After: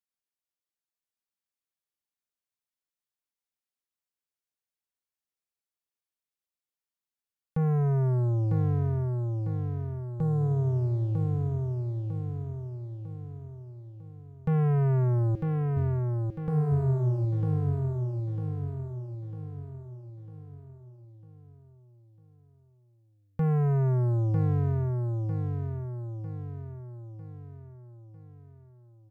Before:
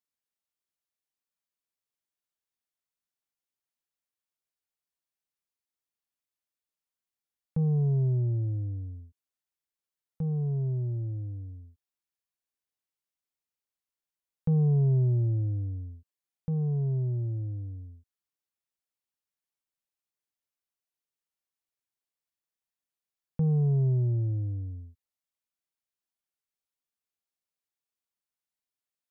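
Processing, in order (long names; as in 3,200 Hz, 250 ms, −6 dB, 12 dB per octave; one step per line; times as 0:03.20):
0:15.35–0:15.77: high-pass filter 420 Hz 12 dB per octave
leveller curve on the samples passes 2
repeating echo 950 ms, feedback 47%, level −4 dB
level −1.5 dB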